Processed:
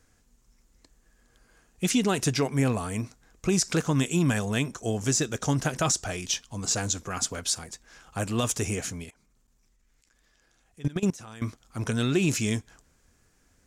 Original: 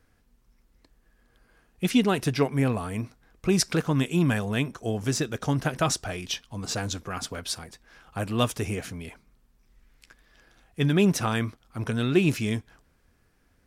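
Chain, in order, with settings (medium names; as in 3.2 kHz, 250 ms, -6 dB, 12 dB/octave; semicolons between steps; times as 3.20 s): peaking EQ 7 kHz +13.5 dB 0.72 oct; peak limiter -14.5 dBFS, peak gain reduction 11 dB; 9.04–11.42 s: level held to a coarse grid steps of 22 dB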